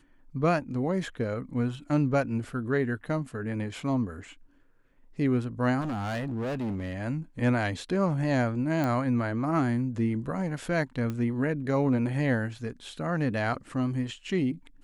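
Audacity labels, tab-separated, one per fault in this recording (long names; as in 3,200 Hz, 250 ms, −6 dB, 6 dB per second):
5.800000	6.940000	clipping −28.5 dBFS
8.840000	8.840000	click −17 dBFS
11.100000	11.100000	click −21 dBFS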